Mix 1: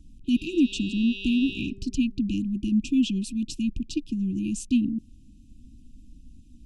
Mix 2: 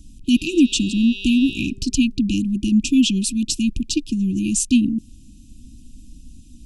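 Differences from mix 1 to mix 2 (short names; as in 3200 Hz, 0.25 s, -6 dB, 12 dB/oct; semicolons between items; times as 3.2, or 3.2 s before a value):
speech +6.5 dB; master: add high shelf 3700 Hz +12 dB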